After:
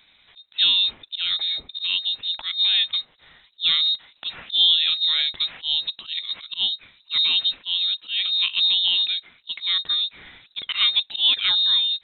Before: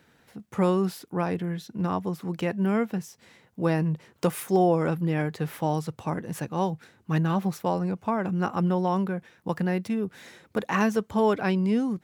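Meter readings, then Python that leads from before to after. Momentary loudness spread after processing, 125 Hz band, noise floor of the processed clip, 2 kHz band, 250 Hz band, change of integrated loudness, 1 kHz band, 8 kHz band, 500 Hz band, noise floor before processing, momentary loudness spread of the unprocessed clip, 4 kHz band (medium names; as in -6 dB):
11 LU, under -30 dB, -59 dBFS, +4.5 dB, under -30 dB, +7.0 dB, -14.5 dB, under -35 dB, under -25 dB, -62 dBFS, 9 LU, +30.0 dB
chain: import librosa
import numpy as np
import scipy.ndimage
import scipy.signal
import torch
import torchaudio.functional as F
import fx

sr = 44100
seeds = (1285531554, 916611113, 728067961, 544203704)

y = fx.freq_invert(x, sr, carrier_hz=3900)
y = fx.auto_swell(y, sr, attack_ms=104.0)
y = y * librosa.db_to_amplitude(4.0)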